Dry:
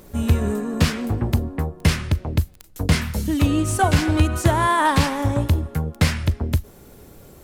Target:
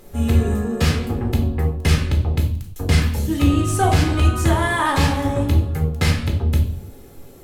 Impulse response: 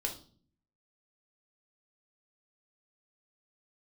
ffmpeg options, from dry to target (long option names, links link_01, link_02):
-filter_complex "[1:a]atrim=start_sample=2205,afade=type=out:start_time=0.34:duration=0.01,atrim=end_sample=15435,asetrate=36603,aresample=44100[link_01];[0:a][link_01]afir=irnorm=-1:irlink=0,volume=-2.5dB"